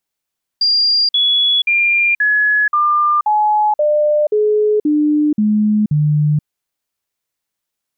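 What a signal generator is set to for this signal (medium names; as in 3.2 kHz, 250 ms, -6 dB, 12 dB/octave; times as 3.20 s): stepped sine 4.79 kHz down, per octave 2, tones 11, 0.48 s, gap 0.05 s -10.5 dBFS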